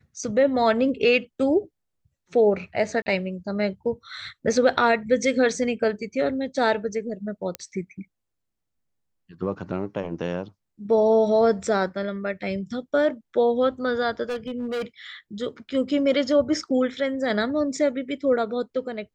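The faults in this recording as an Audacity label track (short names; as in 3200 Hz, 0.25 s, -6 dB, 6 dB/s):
3.020000	3.060000	gap 40 ms
7.550000	7.550000	pop -13 dBFS
14.290000	14.820000	clipped -25 dBFS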